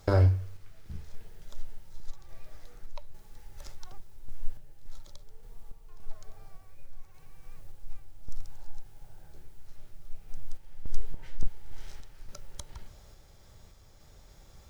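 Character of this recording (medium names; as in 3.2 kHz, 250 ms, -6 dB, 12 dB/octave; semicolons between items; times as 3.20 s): random-step tremolo 3.5 Hz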